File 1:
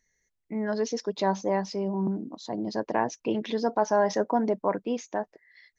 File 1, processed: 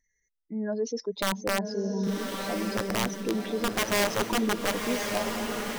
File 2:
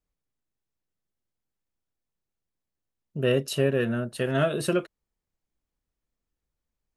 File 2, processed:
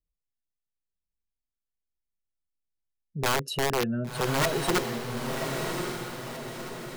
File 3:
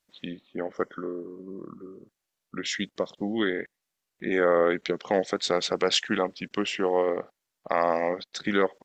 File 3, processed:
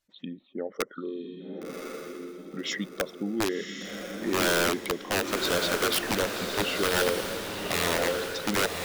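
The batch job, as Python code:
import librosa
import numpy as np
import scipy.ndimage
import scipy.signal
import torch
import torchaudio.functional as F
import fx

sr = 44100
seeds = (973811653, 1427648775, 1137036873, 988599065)

y = fx.spec_expand(x, sr, power=1.6)
y = (np.mod(10.0 ** (18.0 / 20.0) * y + 1.0, 2.0) - 1.0) / 10.0 ** (18.0 / 20.0)
y = fx.echo_diffused(y, sr, ms=1100, feedback_pct=47, wet_db=-4)
y = y * librosa.db_to_amplitude(-1.5)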